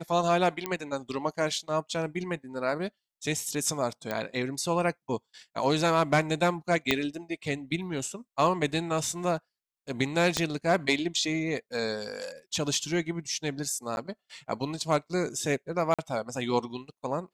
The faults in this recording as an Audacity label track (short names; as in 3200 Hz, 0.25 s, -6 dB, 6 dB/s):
0.660000	0.660000	pop -14 dBFS
4.110000	4.110000	pop -17 dBFS
6.910000	6.910000	pop -8 dBFS
10.370000	10.370000	pop -11 dBFS
13.960000	13.970000	gap
15.940000	15.990000	gap 46 ms